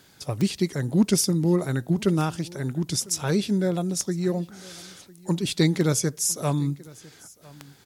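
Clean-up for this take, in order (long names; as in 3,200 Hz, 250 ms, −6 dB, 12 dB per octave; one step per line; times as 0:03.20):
click removal
echo removal 1,002 ms −23 dB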